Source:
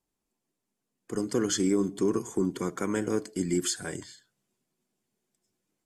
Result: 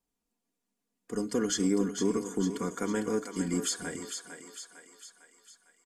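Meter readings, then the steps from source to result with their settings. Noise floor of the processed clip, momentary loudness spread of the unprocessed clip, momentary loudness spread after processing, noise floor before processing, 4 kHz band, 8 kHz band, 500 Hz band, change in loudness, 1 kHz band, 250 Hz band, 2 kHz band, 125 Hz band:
-85 dBFS, 11 LU, 19 LU, -84 dBFS, -1.0 dB, -0.5 dB, -2.5 dB, -2.0 dB, -0.5 dB, -1.5 dB, -0.5 dB, -2.0 dB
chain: comb 4.2 ms, depth 54%; on a send: thinning echo 0.453 s, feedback 54%, high-pass 450 Hz, level -7 dB; on the sum: gain -3 dB

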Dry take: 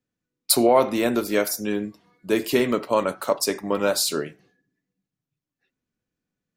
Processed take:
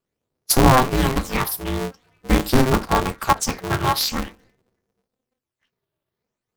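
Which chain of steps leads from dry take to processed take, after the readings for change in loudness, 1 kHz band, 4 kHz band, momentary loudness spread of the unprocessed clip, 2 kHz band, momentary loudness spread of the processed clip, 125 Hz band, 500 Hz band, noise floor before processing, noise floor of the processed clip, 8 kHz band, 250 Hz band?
+2.5 dB, +6.5 dB, +2.5 dB, 10 LU, +5.0 dB, 13 LU, +15.5 dB, -3.0 dB, under -85 dBFS, -85 dBFS, +1.0 dB, +2.5 dB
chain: band inversion scrambler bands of 500 Hz; phaser stages 12, 0.46 Hz, lowest notch 110–3200 Hz; polarity switched at an audio rate 130 Hz; gain +4.5 dB

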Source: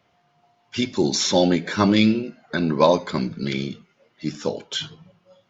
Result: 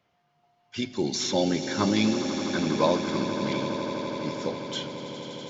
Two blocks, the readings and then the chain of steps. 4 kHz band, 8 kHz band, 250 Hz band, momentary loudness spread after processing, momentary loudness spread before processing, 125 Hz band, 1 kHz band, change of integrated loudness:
-5.0 dB, n/a, -5.0 dB, 10 LU, 15 LU, -6.0 dB, -5.0 dB, -5.5 dB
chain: swelling echo 82 ms, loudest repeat 8, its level -13.5 dB; gain -7 dB

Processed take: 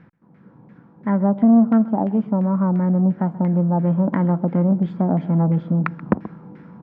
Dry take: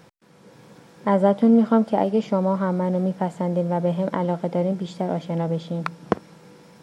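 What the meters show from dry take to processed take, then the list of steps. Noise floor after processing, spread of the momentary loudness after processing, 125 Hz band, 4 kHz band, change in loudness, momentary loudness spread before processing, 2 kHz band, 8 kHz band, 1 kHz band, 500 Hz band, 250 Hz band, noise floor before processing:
-51 dBFS, 9 LU, +7.0 dB, under -10 dB, +3.5 dB, 11 LU, 0.0 dB, n/a, -1.5 dB, -4.0 dB, +5.0 dB, -52 dBFS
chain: resonant low shelf 350 Hz +9 dB, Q 1.5; vocal rider within 5 dB 2 s; LFO low-pass saw down 2.9 Hz 760–2000 Hz; on a send: echo 0.131 s -19 dB; on the sum: core saturation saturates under 480 Hz; gain -5.5 dB

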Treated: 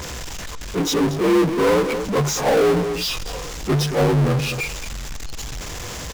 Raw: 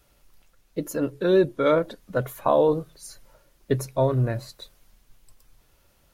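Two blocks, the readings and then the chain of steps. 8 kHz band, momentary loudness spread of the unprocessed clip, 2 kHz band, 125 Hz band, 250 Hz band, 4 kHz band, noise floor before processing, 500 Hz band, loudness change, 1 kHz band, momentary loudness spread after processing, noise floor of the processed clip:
+15.5 dB, 17 LU, +10.5 dB, +6.5 dB, +7.0 dB, +15.5 dB, -63 dBFS, +3.5 dB, +4.0 dB, +5.0 dB, 15 LU, -32 dBFS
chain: inharmonic rescaling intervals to 82%; echo 0.221 s -23 dB; power-law curve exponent 0.35; gain -1.5 dB

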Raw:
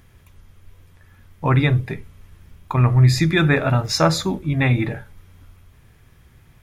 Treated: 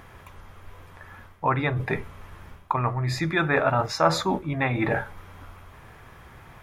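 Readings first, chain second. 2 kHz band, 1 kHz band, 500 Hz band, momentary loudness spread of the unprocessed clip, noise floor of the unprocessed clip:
-2.5 dB, +1.0 dB, -2.0 dB, 12 LU, -52 dBFS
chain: reverse; compressor 6:1, threshold -28 dBFS, peak gain reduction 17 dB; reverse; bell 940 Hz +15 dB 2.6 oct

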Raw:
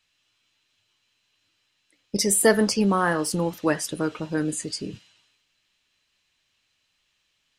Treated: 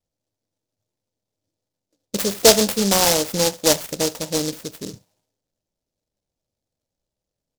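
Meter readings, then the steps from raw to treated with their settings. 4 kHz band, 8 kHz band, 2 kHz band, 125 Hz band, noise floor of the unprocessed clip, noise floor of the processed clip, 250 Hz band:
+11.5 dB, +6.5 dB, -0.5 dB, 0.0 dB, -72 dBFS, -85 dBFS, -0.5 dB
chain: low-pass opened by the level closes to 450 Hz, open at -21 dBFS; band shelf 670 Hz +9.5 dB 1.2 oct; on a send: echo 74 ms -21.5 dB; on the sum: downsampling 16000 Hz; noise-modulated delay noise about 5200 Hz, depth 0.22 ms

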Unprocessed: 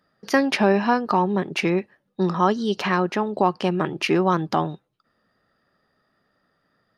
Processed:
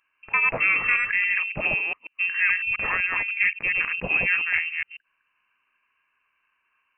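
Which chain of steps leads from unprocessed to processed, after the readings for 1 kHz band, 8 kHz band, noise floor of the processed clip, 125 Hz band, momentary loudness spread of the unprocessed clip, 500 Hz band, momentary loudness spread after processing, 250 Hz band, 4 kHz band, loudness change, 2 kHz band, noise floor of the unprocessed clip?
-12.0 dB, under -35 dB, -73 dBFS, -15.5 dB, 6 LU, -16.0 dB, 6 LU, -22.0 dB, -7.5 dB, 0.0 dB, +9.0 dB, -71 dBFS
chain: reverse delay 0.138 s, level -2.5 dB; inverted band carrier 2900 Hz; gain -4.5 dB

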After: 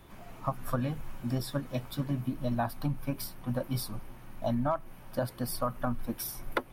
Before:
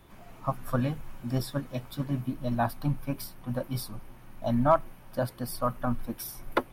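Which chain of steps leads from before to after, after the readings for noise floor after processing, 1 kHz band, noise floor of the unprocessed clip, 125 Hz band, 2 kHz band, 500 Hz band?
-50 dBFS, -5.0 dB, -51 dBFS, -2.0 dB, -2.5 dB, -4.0 dB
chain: compressor 6:1, threshold -28 dBFS, peak gain reduction 11.5 dB; gain +1.5 dB

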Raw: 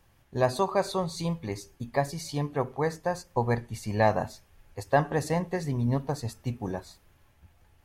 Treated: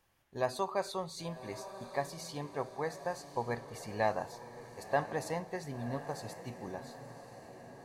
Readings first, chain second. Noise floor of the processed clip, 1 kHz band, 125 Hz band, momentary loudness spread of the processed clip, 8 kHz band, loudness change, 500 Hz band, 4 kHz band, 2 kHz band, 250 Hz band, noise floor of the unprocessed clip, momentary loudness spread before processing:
-53 dBFS, -7.0 dB, -14.0 dB, 15 LU, -6.0 dB, -8.5 dB, -7.5 dB, -6.0 dB, -6.5 dB, -11.0 dB, -63 dBFS, 11 LU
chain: low shelf 220 Hz -10.5 dB; diffused feedback echo 1.05 s, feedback 56%, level -12 dB; gain -6.5 dB

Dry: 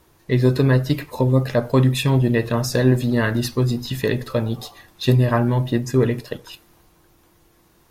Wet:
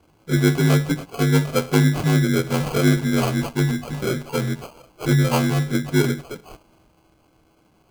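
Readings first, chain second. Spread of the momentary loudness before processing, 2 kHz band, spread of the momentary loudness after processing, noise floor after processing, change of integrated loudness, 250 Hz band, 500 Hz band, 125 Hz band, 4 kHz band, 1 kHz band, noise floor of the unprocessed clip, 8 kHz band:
8 LU, +1.5 dB, 8 LU, -60 dBFS, -1.0 dB, 0.0 dB, -3.0 dB, -1.0 dB, +0.5 dB, 0.0 dB, -57 dBFS, +3.5 dB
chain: inharmonic rescaling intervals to 82%; sample-and-hold 24×

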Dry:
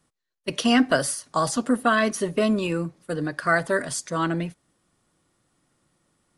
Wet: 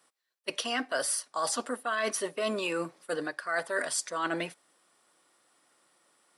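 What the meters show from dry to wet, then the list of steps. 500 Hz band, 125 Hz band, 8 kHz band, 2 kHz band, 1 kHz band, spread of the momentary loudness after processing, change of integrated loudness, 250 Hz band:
-7.5 dB, -18.5 dB, -2.0 dB, -6.5 dB, -8.0 dB, 5 LU, -8.0 dB, -15.0 dB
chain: HPF 520 Hz 12 dB/oct; notch 6600 Hz, Q 12; reverse; compressor 12:1, threshold -32 dBFS, peak gain reduction 16 dB; reverse; gain +4.5 dB

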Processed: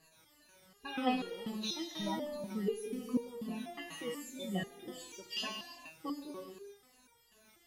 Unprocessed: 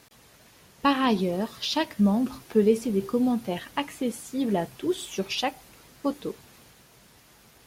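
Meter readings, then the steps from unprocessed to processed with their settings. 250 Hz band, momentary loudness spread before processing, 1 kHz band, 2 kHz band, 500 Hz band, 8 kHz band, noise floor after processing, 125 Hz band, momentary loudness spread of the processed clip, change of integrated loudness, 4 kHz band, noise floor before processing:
-13.5 dB, 9 LU, -12.0 dB, -10.0 dB, -13.5 dB, -8.5 dB, -67 dBFS, -14.0 dB, 12 LU, -13.0 dB, -8.5 dB, -56 dBFS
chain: moving spectral ripple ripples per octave 1.5, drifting -2.6 Hz, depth 20 dB; non-linear reverb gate 0.43 s flat, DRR 5.5 dB; stepped resonator 4.1 Hz 160–470 Hz; gain -1 dB

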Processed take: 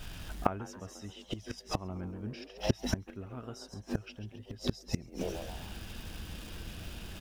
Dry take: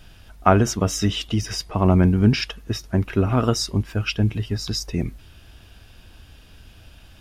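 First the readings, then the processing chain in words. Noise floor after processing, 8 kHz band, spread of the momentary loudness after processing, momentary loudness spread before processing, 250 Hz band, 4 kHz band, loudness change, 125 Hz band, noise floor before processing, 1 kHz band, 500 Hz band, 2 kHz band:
-56 dBFS, -16.0 dB, 11 LU, 10 LU, -16.5 dB, -15.0 dB, -18.0 dB, -18.5 dB, -48 dBFS, -14.5 dB, -14.5 dB, -14.5 dB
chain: crackle 500/s -43 dBFS; frequency-shifting echo 0.134 s, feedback 45%, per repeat +140 Hz, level -10 dB; flipped gate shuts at -17 dBFS, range -27 dB; gain +2.5 dB

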